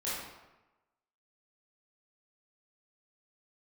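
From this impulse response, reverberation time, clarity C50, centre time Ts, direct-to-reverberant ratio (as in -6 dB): 1.0 s, -1.0 dB, 80 ms, -10.5 dB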